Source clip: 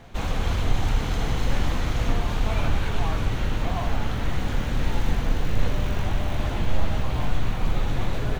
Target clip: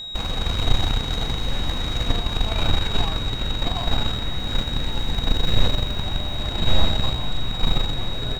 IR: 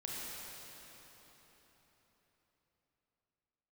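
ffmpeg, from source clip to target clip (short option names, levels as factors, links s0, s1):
-af "aeval=exprs='val(0)+0.0398*sin(2*PI*3800*n/s)':c=same,aeval=exprs='0.447*(cos(1*acos(clip(val(0)/0.447,-1,1)))-cos(1*PI/2))+0.158*(cos(2*acos(clip(val(0)/0.447,-1,1)))-cos(2*PI/2))+0.0178*(cos(5*acos(clip(val(0)/0.447,-1,1)))-cos(5*PI/2))+0.0316*(cos(7*acos(clip(val(0)/0.447,-1,1)))-cos(7*PI/2))':c=same"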